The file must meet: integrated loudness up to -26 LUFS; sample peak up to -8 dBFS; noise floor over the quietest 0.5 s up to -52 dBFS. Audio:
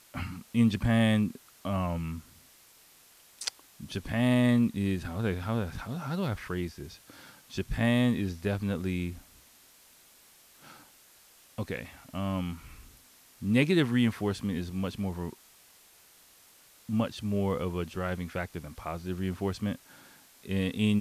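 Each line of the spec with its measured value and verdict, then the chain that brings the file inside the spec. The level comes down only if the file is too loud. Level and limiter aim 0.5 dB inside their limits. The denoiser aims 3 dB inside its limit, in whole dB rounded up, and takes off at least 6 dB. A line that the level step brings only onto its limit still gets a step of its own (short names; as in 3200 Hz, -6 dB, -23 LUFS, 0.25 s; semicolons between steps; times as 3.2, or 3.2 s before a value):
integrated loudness -30.5 LUFS: OK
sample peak -12.0 dBFS: OK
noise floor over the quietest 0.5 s -58 dBFS: OK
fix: none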